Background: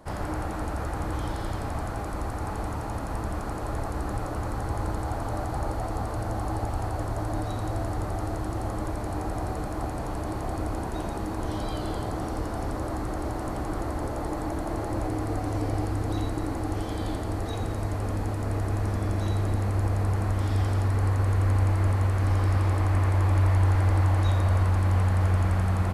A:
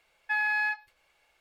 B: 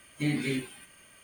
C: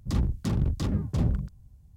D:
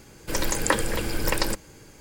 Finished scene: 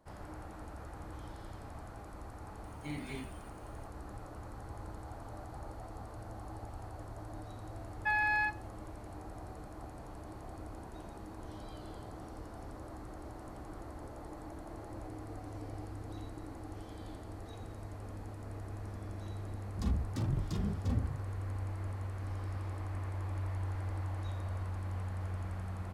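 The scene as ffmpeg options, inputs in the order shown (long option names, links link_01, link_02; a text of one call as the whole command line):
ffmpeg -i bed.wav -i cue0.wav -i cue1.wav -i cue2.wav -filter_complex "[0:a]volume=-16dB[link_01];[1:a]equalizer=frequency=700:width=1.1:gain=7.5[link_02];[3:a]asplit=2[link_03][link_04];[link_04]adelay=2.4,afreqshift=1.1[link_05];[link_03][link_05]amix=inputs=2:normalize=1[link_06];[2:a]atrim=end=1.23,asetpts=PTS-STARTPTS,volume=-13dB,afade=type=in:duration=0.004:curve=hsin,afade=type=out:start_time=1.226:duration=0.004:curve=hsin,adelay=2640[link_07];[link_02]atrim=end=1.4,asetpts=PTS-STARTPTS,volume=-5.5dB,afade=type=in:duration=0.004:curve=hsin,afade=type=out:start_time=1.396:duration=0.004:curve=hsin,adelay=7760[link_08];[link_06]atrim=end=1.96,asetpts=PTS-STARTPTS,volume=-5dB,afade=type=in:duration=0.004:curve=hsin,afade=type=out:start_time=1.956:duration=0.004:curve=hsin,adelay=19710[link_09];[link_01][link_07][link_08][link_09]amix=inputs=4:normalize=0" out.wav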